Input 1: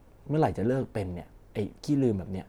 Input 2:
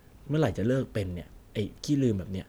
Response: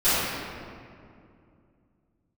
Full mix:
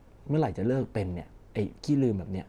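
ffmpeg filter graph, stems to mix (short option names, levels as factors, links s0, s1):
-filter_complex "[0:a]lowpass=8300,volume=1.06[s0];[1:a]volume=0.2[s1];[s0][s1]amix=inputs=2:normalize=0,alimiter=limit=0.158:level=0:latency=1:release=419"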